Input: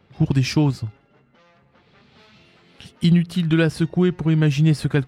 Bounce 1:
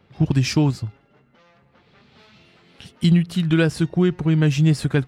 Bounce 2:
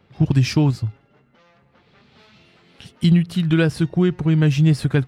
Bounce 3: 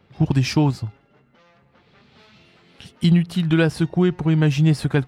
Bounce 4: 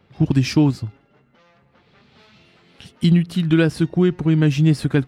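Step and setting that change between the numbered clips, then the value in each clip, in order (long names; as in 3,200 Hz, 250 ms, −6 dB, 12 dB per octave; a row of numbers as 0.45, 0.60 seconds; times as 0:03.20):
dynamic equaliser, frequency: 7,200, 110, 830, 280 Hertz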